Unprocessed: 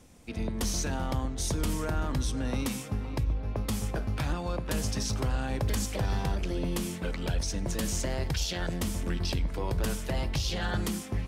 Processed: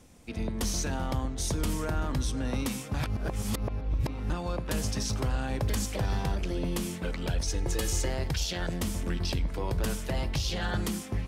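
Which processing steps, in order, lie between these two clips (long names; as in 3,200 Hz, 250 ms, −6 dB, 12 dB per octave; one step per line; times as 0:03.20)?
0:02.94–0:04.30: reverse
0:07.47–0:08.10: comb filter 2.4 ms, depth 66%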